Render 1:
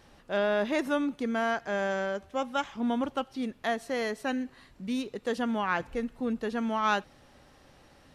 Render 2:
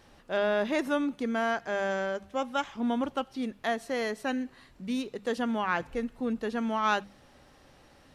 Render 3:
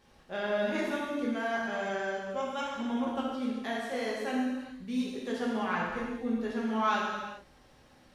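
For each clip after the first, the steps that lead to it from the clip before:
notches 50/100/150/200 Hz
non-linear reverb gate 0.46 s falling, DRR -5.5 dB; gain -8.5 dB

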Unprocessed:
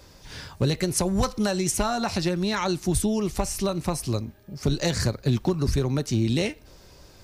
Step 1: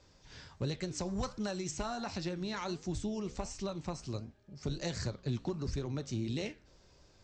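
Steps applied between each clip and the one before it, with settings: steep low-pass 7900 Hz 96 dB/oct; flange 1.4 Hz, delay 8.3 ms, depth 9.5 ms, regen -82%; gain -8 dB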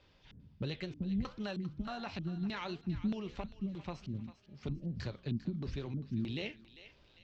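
LFO low-pass square 1.6 Hz 220–3100 Hz; thinning echo 0.398 s, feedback 48%, high-pass 950 Hz, level -12.5 dB; gain -3.5 dB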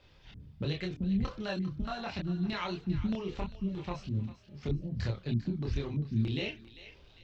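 chorus voices 6, 0.55 Hz, delay 27 ms, depth 1.6 ms; gain +7.5 dB

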